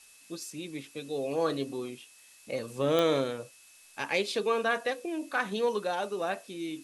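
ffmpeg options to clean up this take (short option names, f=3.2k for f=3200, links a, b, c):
-af "adeclick=t=4,bandreject=f=2.6k:w=30,afftdn=nr=19:nf=-57"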